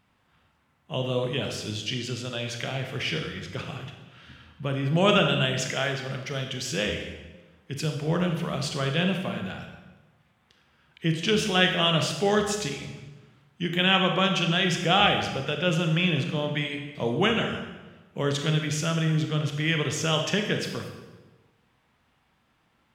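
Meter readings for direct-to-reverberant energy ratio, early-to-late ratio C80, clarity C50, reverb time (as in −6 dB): 4.0 dB, 8.0 dB, 5.5 dB, 1.2 s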